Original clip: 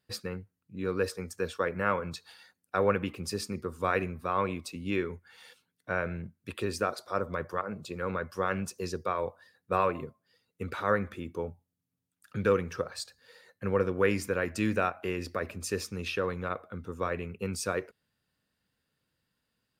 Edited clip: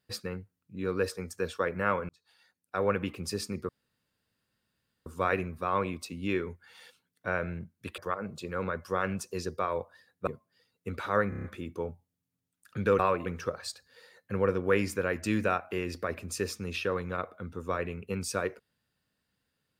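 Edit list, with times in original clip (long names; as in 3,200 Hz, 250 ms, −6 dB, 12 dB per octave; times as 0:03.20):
0:02.09–0:03.07: fade in
0:03.69: splice in room tone 1.37 s
0:06.61–0:07.45: remove
0:09.74–0:10.01: move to 0:12.58
0:11.03: stutter 0.03 s, 6 plays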